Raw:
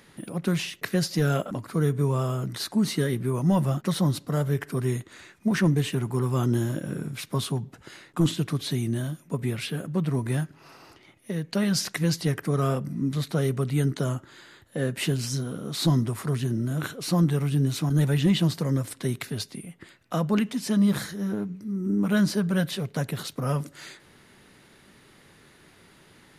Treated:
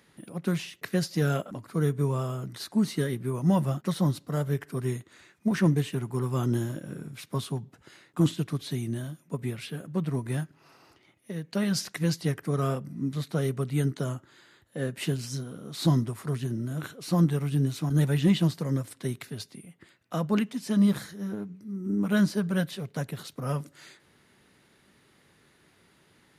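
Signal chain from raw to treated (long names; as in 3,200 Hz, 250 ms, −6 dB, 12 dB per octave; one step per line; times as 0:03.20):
high-pass filter 42 Hz
expander for the loud parts 1.5 to 1, over −32 dBFS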